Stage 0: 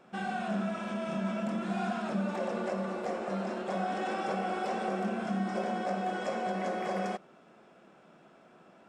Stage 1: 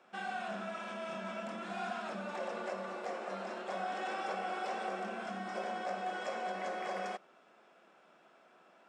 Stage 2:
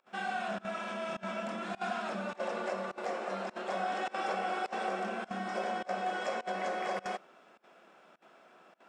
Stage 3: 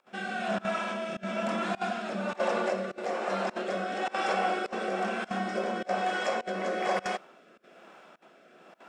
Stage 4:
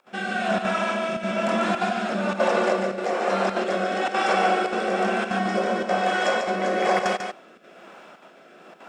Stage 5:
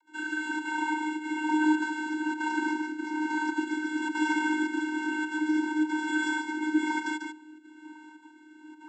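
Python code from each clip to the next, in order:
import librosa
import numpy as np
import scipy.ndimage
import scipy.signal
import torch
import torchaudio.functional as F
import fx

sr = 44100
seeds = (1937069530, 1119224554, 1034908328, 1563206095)

y1 = fx.weighting(x, sr, curve='A')
y1 = F.gain(torch.from_numpy(y1), -3.0).numpy()
y2 = fx.volume_shaper(y1, sr, bpm=103, per_beat=1, depth_db=-24, release_ms=62.0, shape='slow start')
y2 = F.gain(torch.from_numpy(y2), 4.0).numpy()
y3 = fx.rotary(y2, sr, hz=1.1)
y3 = F.gain(torch.from_numpy(y3), 8.0).numpy()
y4 = y3 + 10.0 ** (-6.0 / 20.0) * np.pad(y3, (int(144 * sr / 1000.0), 0))[:len(y3)]
y4 = F.gain(torch.from_numpy(y4), 6.5).numpy()
y5 = (np.kron(scipy.signal.resample_poly(y4, 1, 4), np.eye(4)[0]) * 4)[:len(y4)]
y5 = fx.vocoder(y5, sr, bands=32, carrier='square', carrier_hz=308.0)
y5 = F.gain(torch.from_numpy(y5), -4.5).numpy()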